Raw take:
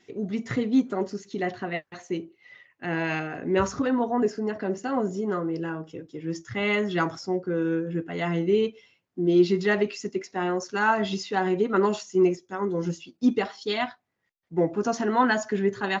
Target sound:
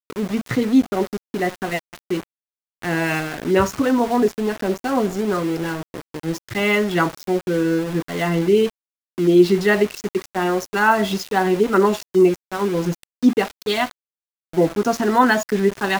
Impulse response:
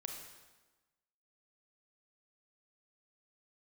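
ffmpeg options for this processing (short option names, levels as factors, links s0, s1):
-af "aeval=exprs='val(0)*gte(abs(val(0)),0.02)':c=same,volume=2.11"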